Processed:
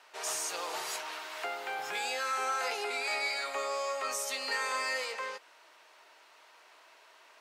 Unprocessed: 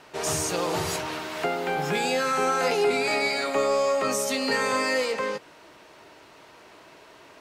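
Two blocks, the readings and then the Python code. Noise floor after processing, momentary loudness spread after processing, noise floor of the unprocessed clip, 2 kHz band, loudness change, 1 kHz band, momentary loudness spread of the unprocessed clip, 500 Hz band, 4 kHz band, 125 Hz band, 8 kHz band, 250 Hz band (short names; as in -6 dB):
-60 dBFS, 7 LU, -51 dBFS, -6.0 dB, -8.5 dB, -7.5 dB, 6 LU, -14.0 dB, -6.0 dB, under -30 dB, -6.0 dB, -23.5 dB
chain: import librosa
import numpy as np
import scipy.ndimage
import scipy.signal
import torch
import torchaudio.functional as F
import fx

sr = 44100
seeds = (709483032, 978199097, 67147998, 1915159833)

y = scipy.signal.sosfilt(scipy.signal.butter(2, 780.0, 'highpass', fs=sr, output='sos'), x)
y = F.gain(torch.from_numpy(y), -6.0).numpy()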